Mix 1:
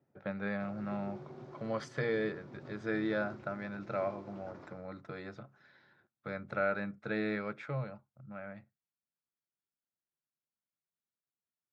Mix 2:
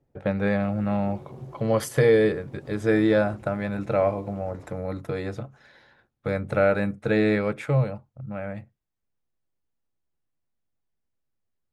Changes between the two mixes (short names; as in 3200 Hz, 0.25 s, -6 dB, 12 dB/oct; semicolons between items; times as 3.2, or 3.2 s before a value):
speech +10.0 dB; master: remove speaker cabinet 170–5500 Hz, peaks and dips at 290 Hz -4 dB, 480 Hz -7 dB, 800 Hz -3 dB, 1400 Hz +5 dB, 2900 Hz -4 dB